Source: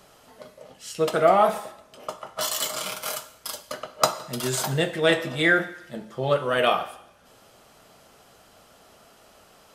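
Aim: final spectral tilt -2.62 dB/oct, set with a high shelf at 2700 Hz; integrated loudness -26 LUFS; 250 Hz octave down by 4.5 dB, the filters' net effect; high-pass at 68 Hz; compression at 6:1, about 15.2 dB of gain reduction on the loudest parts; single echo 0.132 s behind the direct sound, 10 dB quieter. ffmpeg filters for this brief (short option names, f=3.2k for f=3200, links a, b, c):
-af "highpass=68,equalizer=f=250:t=o:g=-7.5,highshelf=f=2.7k:g=6,acompressor=threshold=-30dB:ratio=6,aecho=1:1:132:0.316,volume=7.5dB"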